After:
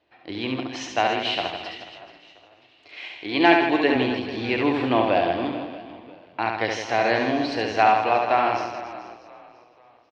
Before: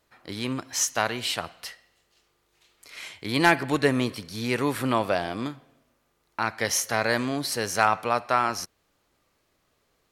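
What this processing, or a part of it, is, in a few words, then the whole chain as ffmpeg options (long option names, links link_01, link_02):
frequency-shifting delay pedal into a guitar cabinet: -filter_complex "[0:a]asplit=4[link_01][link_02][link_03][link_04];[link_02]adelay=489,afreqshift=-38,volume=-19dB[link_05];[link_03]adelay=978,afreqshift=-76,volume=-26.5dB[link_06];[link_04]adelay=1467,afreqshift=-114,volume=-34.1dB[link_07];[link_01][link_05][link_06][link_07]amix=inputs=4:normalize=0,highpass=88,equalizer=frequency=150:width_type=q:width=4:gain=-7,equalizer=frequency=220:width_type=q:width=4:gain=-3,equalizer=frequency=320:width_type=q:width=4:gain=8,equalizer=frequency=730:width_type=q:width=4:gain=8,equalizer=frequency=1300:width_type=q:width=4:gain=-7,equalizer=frequency=2700:width_type=q:width=4:gain=6,lowpass=frequency=4000:width=0.5412,lowpass=frequency=4000:width=1.3066,asettb=1/sr,asplit=3[link_08][link_09][link_10];[link_08]atrim=end=2.974[link_11];[link_09]atrim=start=2.97:end=3.96,asetpts=PTS-STARTPTS,afade=type=in:duration=0.004:curve=qsin,afade=type=out:start_time=0.986:duration=0.004:curve=qsin,highpass=frequency=260:poles=1[link_12];[link_10]atrim=start=3.956[link_13];[link_11][link_12]acrossfade=duration=0.004:curve1=hsin:curve2=qsin[link_14];[link_14][link_13]acrossfade=duration=0.004:curve1=qsin:curve2=hsin,aecho=1:1:70|161|279.3|433.1|633:0.631|0.398|0.251|0.158|0.1"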